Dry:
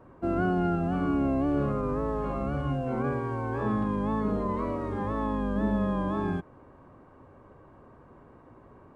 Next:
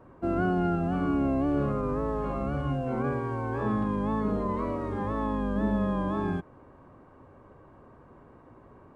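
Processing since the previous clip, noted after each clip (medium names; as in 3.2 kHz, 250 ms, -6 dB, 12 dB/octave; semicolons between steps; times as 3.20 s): no audible change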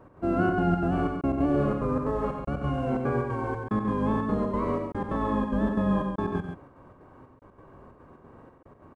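trance gate "x.xxxx.xx.xxx.." 182 bpm -60 dB; on a send: loudspeakers at several distances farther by 16 m -11 dB, 31 m -7 dB, 47 m -6 dB; on the sum: trim +1.5 dB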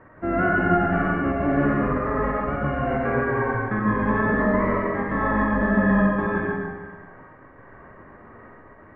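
companded quantiser 8-bit; resonant low-pass 1.9 kHz, resonance Q 7.2; reverberation RT60 1.4 s, pre-delay 35 ms, DRR -2 dB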